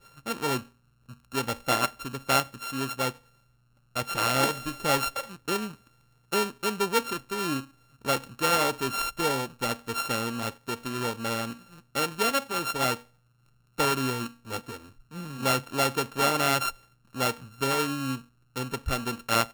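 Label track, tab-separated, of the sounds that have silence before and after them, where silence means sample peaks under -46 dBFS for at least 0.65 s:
3.950000	13.020000	sound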